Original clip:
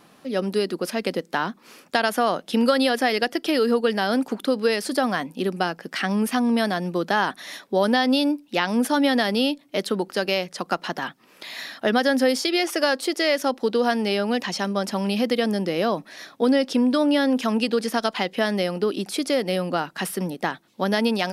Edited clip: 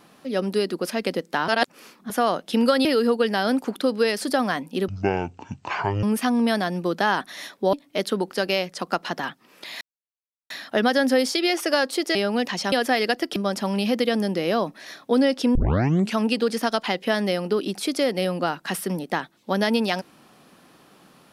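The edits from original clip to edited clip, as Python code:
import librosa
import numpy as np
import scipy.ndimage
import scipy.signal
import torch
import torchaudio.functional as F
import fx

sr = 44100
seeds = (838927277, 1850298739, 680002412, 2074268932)

y = fx.edit(x, sr, fx.reverse_span(start_s=1.48, length_s=0.62),
    fx.move(start_s=2.85, length_s=0.64, to_s=14.67),
    fx.speed_span(start_s=5.52, length_s=0.61, speed=0.53),
    fx.cut(start_s=7.83, length_s=1.69),
    fx.insert_silence(at_s=11.6, length_s=0.69),
    fx.cut(start_s=13.25, length_s=0.85),
    fx.tape_start(start_s=16.86, length_s=0.62), tone=tone)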